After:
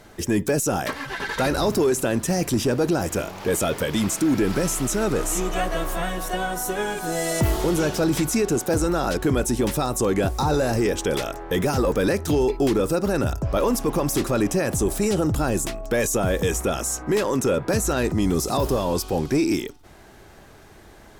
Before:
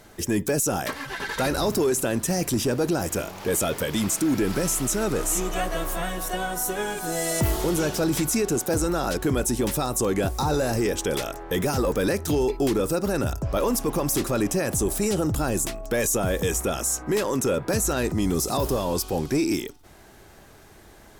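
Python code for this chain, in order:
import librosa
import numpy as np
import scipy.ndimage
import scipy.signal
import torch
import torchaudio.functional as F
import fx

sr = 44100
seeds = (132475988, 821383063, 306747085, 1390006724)

y = fx.high_shelf(x, sr, hz=6800.0, db=-6.5)
y = F.gain(torch.from_numpy(y), 2.5).numpy()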